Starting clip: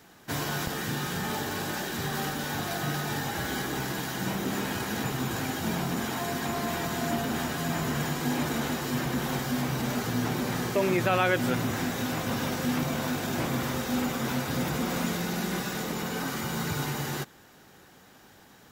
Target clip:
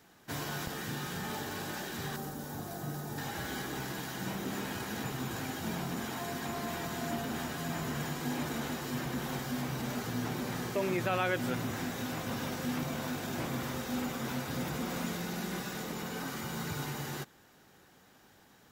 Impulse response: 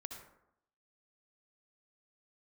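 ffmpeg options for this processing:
-filter_complex "[0:a]asettb=1/sr,asplit=3[a][b][c];[a]atrim=end=2.164[d];[b]atrim=start=2.16:end=3.18,asetpts=PTS-STARTPTS,afade=t=in:d=0.004:c=qsin,afade=t=out:st=1.016:d=0.004:c=qsin,equalizer=f=2.6k:w=0.6:g=-12.5[e];[c]atrim=start=3.176[f];[d][e]acrossfade=d=0.004:c1=hsin:c2=qsin[g];[g][f]acrossfade=d=0.004:c1=qsin:c2=hsin,volume=-6.5dB"

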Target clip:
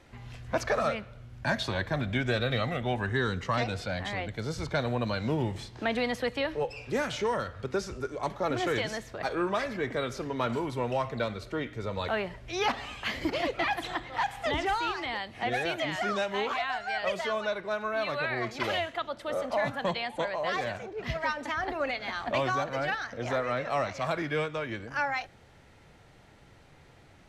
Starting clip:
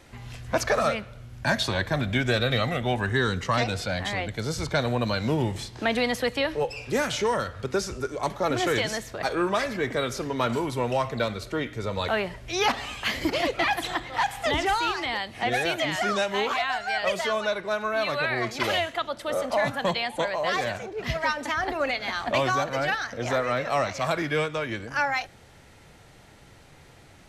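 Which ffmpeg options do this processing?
-af "highshelf=f=5.8k:g=-9.5,volume=-4dB"

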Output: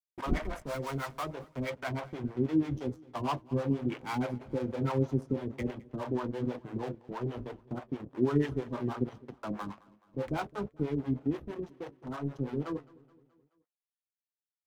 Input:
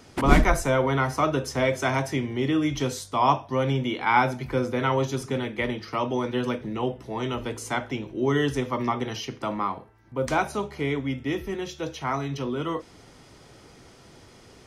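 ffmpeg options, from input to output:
-filter_complex "[0:a]afwtdn=0.0398,agate=range=-33dB:threshold=-39dB:ratio=3:detection=peak,lowshelf=f=480:g=-7.5,acrossover=split=380[a][b];[a]dynaudnorm=f=750:g=5:m=10.5dB[c];[b]asoftclip=type=tanh:threshold=-26dB[d];[c][d]amix=inputs=2:normalize=0,asettb=1/sr,asplit=3[e][f][g];[e]atrim=end=0.624[h];[f]atrim=start=0.62:end=1.23,asetpts=PTS-STARTPTS,afade=t=in:d=0.004:c=qsin,afade=t=out:st=0.606:d=0.004:c=qsin,acrusher=bits=5:mix=0:aa=0.5[i];[g]atrim=start=1.226[j];[h][i]acrossfade=d=0.004:c1=hsin:c2=qsin[k];[k][j]acrossfade=d=0.004:c1=qsin:c2=hsin,aeval=exprs='sgn(val(0))*max(abs(val(0))-0.0126,0)':c=same,flanger=delay=6.9:depth=4.4:regen=-61:speed=1.2:shape=sinusoidal,acrossover=split=500[l][m];[l]aeval=exprs='val(0)*(1-1/2+1/2*cos(2*PI*6.2*n/s))':c=same[n];[m]aeval=exprs='val(0)*(1-1/2-1/2*cos(2*PI*6.2*n/s))':c=same[o];[n][o]amix=inputs=2:normalize=0,aecho=1:1:213|426|639|852:0.0708|0.0389|0.0214|0.0118,volume=3dB"

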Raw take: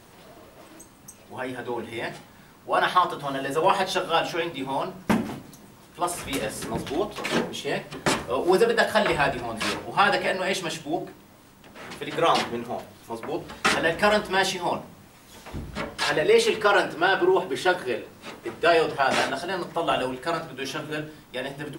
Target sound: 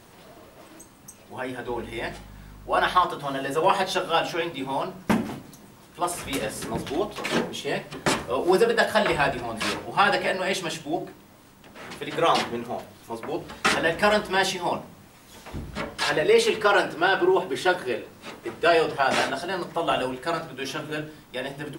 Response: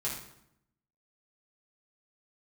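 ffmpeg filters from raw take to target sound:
-filter_complex "[0:a]asettb=1/sr,asplit=3[a][b][c];[a]atrim=end=1.684[d];[b]atrim=start=1.68:end=3.04,asetpts=PTS-STARTPTS,afade=t=in:d=0.004:c=qsin,afade=t=out:st=1.356:d=0.004:c=qsin,aeval=exprs='val(0)+0.00631*(sin(2*PI*50*n/s)+sin(2*PI*2*50*n/s)/2+sin(2*PI*3*50*n/s)/3+sin(2*PI*4*50*n/s)/4+sin(2*PI*5*50*n/s)/5)':c=same[e];[c]atrim=start=3.036[f];[d][e]acrossfade=d=0.004:c1=hsin:c2=qsin[g];[g][f]acrossfade=d=0.004:c1=qsin:c2=hsin"

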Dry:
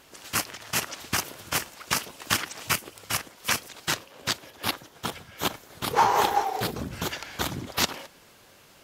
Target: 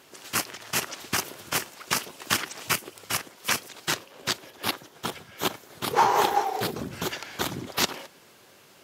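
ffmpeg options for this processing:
-af "highpass=110,equalizer=f=380:w=5.8:g=4.5"

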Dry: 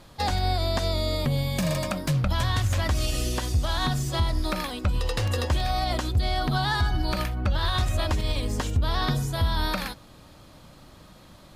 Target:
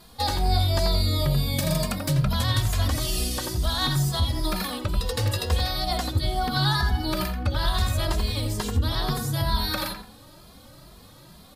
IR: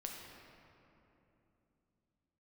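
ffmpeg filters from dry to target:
-filter_complex "[0:a]asplit=2[a][b];[b]adelay=86,lowpass=f=1.8k:p=1,volume=-3dB,asplit=2[c][d];[d]adelay=86,lowpass=f=1.8k:p=1,volume=0.33,asplit=2[e][f];[f]adelay=86,lowpass=f=1.8k:p=1,volume=0.33,asplit=2[g][h];[h]adelay=86,lowpass=f=1.8k:p=1,volume=0.33[i];[a][c][e][g][i]amix=inputs=5:normalize=0,aexciter=amount=2.2:drive=2.9:freq=3.7k,asplit=2[j][k];[k]adelay=2.5,afreqshift=2.2[l];[j][l]amix=inputs=2:normalize=1,volume=1.5dB"

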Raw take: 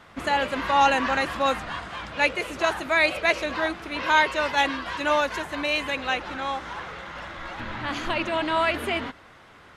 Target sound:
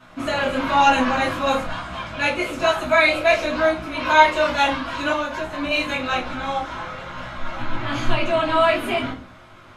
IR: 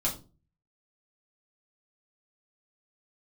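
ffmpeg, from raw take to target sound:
-filter_complex "[0:a]asettb=1/sr,asplit=3[a][b][c];[a]atrim=end=5.104[d];[b]atrim=start=5.1:end=5.71,asetpts=PTS-STARTPTS,afade=t=in:d=0.004:c=qsin,afade=t=out:st=0.606:d=0.004:c=qsin,acrossover=split=1700|6400[e][f][g];[e]acompressor=threshold=-27dB:ratio=4[h];[f]acompressor=threshold=-38dB:ratio=4[i];[g]acompressor=threshold=-59dB:ratio=4[j];[h][i][j]amix=inputs=3:normalize=0[k];[c]atrim=start=5.706[l];[d][k]acrossfade=d=0.004:c1=hsin:c2=qsin[m];[m][l]acrossfade=d=0.004:c1=qsin:c2=hsin,flanger=delay=15.5:depth=4.5:speed=1.1[n];[1:a]atrim=start_sample=2205[o];[n][o]afir=irnorm=-1:irlink=0"

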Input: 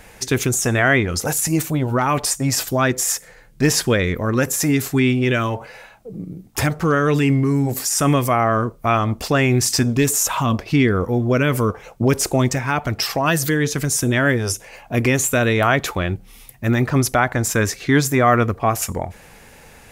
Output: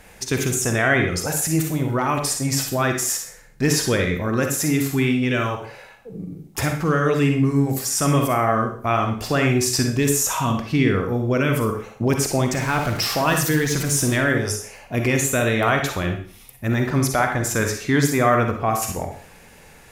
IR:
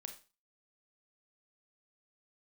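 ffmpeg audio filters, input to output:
-filter_complex "[0:a]asettb=1/sr,asplit=3[a][b][c];[a]atrim=end=12.534[d];[b]atrim=start=12.53:end=14.17,asetpts=PTS-STARTPTS,afade=t=in:d=0.004:c=qsin,afade=t=out:st=1.636:d=0.004:c=qsin,aeval=exprs='val(0)+0.5*0.0596*sgn(val(0))':c=same[e];[c]atrim=start=14.166[f];[d][e]acrossfade=d=0.004:c1=hsin:c2=qsin[g];[g][f]acrossfade=d=0.004:c1=qsin:c2=hsin[h];[1:a]atrim=start_sample=2205,asetrate=30870,aresample=44100[i];[h][i]afir=irnorm=-1:irlink=0"

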